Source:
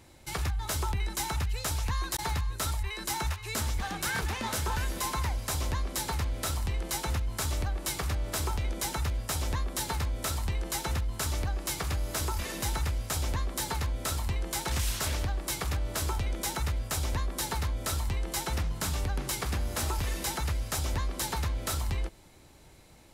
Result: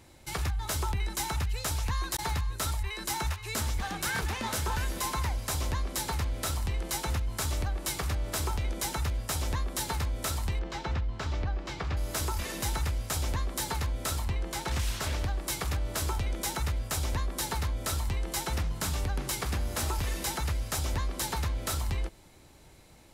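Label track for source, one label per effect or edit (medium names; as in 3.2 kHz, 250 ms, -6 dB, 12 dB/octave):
10.590000	11.970000	distance through air 180 m
14.240000	15.240000	treble shelf 6.3 kHz -8 dB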